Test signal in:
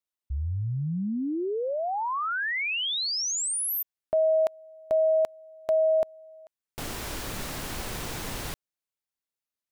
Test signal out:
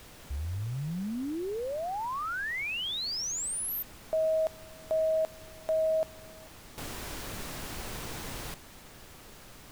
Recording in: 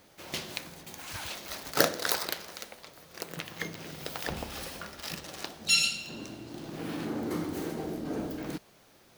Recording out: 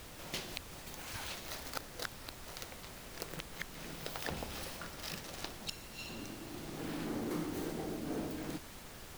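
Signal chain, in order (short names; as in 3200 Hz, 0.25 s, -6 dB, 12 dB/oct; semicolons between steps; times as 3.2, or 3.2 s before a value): flipped gate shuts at -17 dBFS, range -28 dB; added noise pink -45 dBFS; gain -5 dB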